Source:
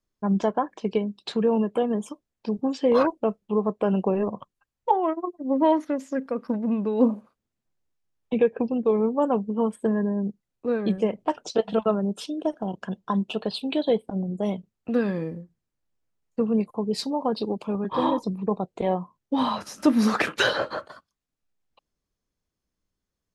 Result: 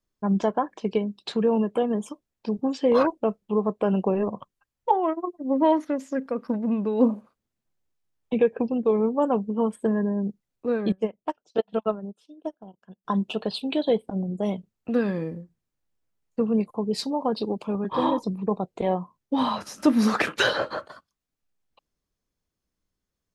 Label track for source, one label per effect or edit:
10.920000	13.050000	upward expander 2.5:1, over -35 dBFS

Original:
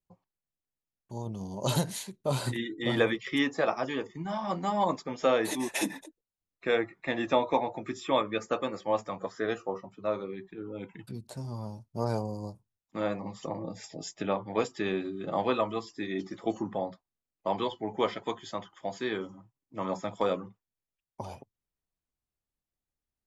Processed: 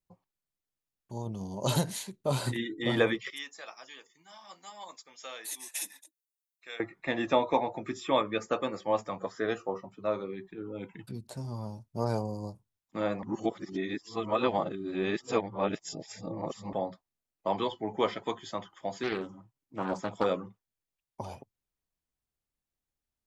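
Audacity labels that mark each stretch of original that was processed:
3.300000	6.800000	differentiator
13.230000	16.730000	reverse
19.030000	20.240000	Doppler distortion depth 0.31 ms

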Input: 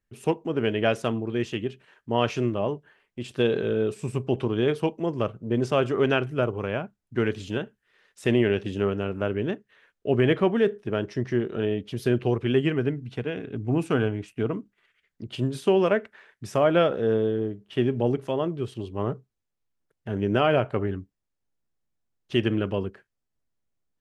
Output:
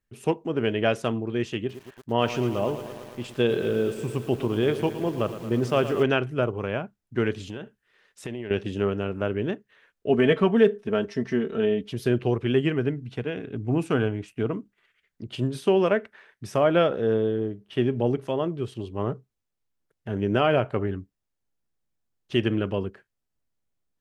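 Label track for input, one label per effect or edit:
1.580000	6.030000	lo-fi delay 0.113 s, feedback 80%, word length 7-bit, level -12 dB
7.400000	8.510000	compressor 5:1, threshold -31 dBFS
10.090000	11.930000	comb 4.5 ms
15.470000	18.270000	notch 7200 Hz

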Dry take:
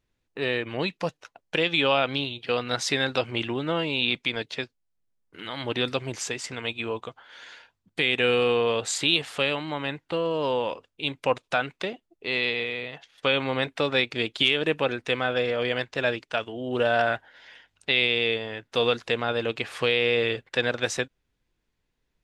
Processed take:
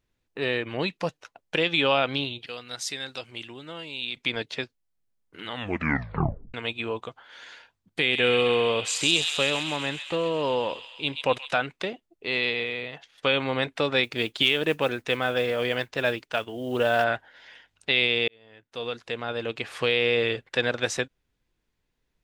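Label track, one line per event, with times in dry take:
2.460000	4.170000	pre-emphasis coefficient 0.8
5.470000	5.470000	tape stop 1.07 s
8.000000	11.570000	thin delay 0.131 s, feedback 71%, high-pass 2700 Hz, level -4 dB
14.030000	17.040000	modulation noise under the signal 29 dB
18.280000	19.980000	fade in

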